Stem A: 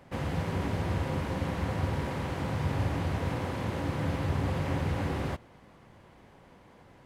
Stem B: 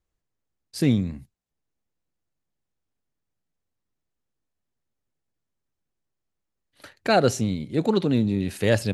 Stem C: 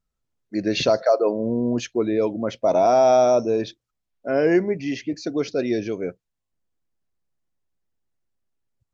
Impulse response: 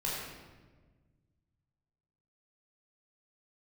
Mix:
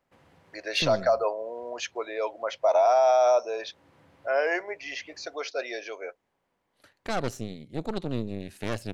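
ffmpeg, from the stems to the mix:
-filter_complex "[0:a]lowshelf=frequency=210:gain=-11.5,acompressor=threshold=-38dB:ratio=3,volume=-19dB[link_01];[1:a]aeval=exprs='0.531*(cos(1*acos(clip(val(0)/0.531,-1,1)))-cos(1*PI/2))+0.119*(cos(6*acos(clip(val(0)/0.531,-1,1)))-cos(6*PI/2))':channel_layout=same,volume=-12.5dB[link_02];[2:a]highpass=frequency=640:width=0.5412,highpass=frequency=640:width=1.3066,highshelf=frequency=3700:gain=-6.5,volume=2.5dB,asplit=2[link_03][link_04];[link_04]apad=whole_len=310963[link_05];[link_01][link_05]sidechaincompress=threshold=-37dB:ratio=3:attack=5.6:release=356[link_06];[link_06][link_02][link_03]amix=inputs=3:normalize=0,alimiter=limit=-14dB:level=0:latency=1:release=81"

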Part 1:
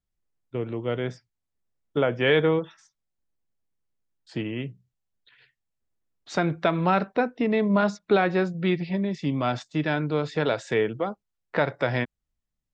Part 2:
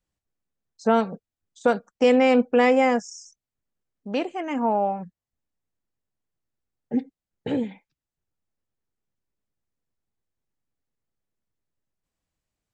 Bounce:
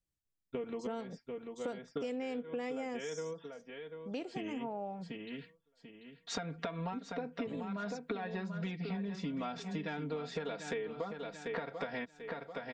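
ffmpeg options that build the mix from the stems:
ffmpeg -i stem1.wav -i stem2.wav -filter_complex "[0:a]acompressor=threshold=-24dB:ratio=6,agate=range=-33dB:threshold=-59dB:ratio=3:detection=peak,aecho=1:1:4.3:0.97,volume=-2.5dB,asplit=2[link_01][link_02];[link_02]volume=-11dB[link_03];[1:a]equalizer=frequency=1100:width_type=o:width=2.4:gain=-8.5,volume=-6dB,asplit=2[link_04][link_05];[link_05]apad=whole_len=561626[link_06];[link_01][link_06]sidechaincompress=threshold=-42dB:ratio=8:attack=32:release=327[link_07];[link_03]aecho=0:1:740|1480|2220|2960|3700:1|0.32|0.102|0.0328|0.0105[link_08];[link_07][link_04][link_08]amix=inputs=3:normalize=0,equalizer=frequency=220:width_type=o:width=0.22:gain=-5.5,acompressor=threshold=-36dB:ratio=6" out.wav

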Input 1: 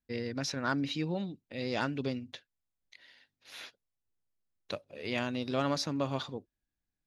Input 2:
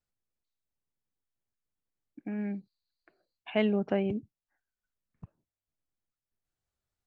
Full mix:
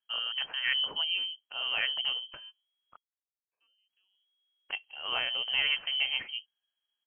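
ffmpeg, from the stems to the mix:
ffmpeg -i stem1.wav -i stem2.wav -filter_complex "[0:a]volume=2dB,asplit=3[link_01][link_02][link_03];[link_01]atrim=end=2.97,asetpts=PTS-STARTPTS,afade=type=out:start_time=2.966:duration=0.004:curve=hsin[link_04];[link_02]atrim=start=2.97:end=3.89,asetpts=PTS-STARTPTS,volume=0[link_05];[link_03]atrim=start=3.89,asetpts=PTS-STARTPTS,afade=type=in:duration=0.004:curve=hsin[link_06];[link_04][link_05][link_06]concat=n=3:v=0:a=1,asplit=2[link_07][link_08];[1:a]adelay=50,volume=-15dB[link_09];[link_08]apad=whole_len=313753[link_10];[link_09][link_10]sidechaingate=range=-33dB:threshold=-58dB:ratio=16:detection=peak[link_11];[link_07][link_11]amix=inputs=2:normalize=0,lowpass=frequency=2800:width_type=q:width=0.5098,lowpass=frequency=2800:width_type=q:width=0.6013,lowpass=frequency=2800:width_type=q:width=0.9,lowpass=frequency=2800:width_type=q:width=2.563,afreqshift=-3300" out.wav

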